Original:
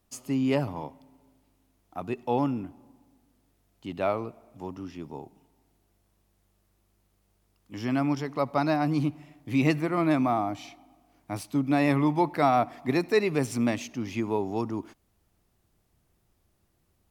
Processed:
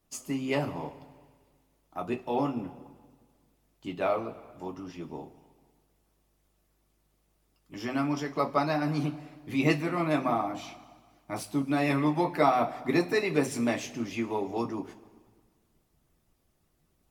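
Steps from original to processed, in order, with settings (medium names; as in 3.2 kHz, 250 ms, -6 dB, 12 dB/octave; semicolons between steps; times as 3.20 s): two-slope reverb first 0.2 s, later 1.6 s, from -18 dB, DRR 0.5 dB; harmonic-percussive split percussive +8 dB; trim -8 dB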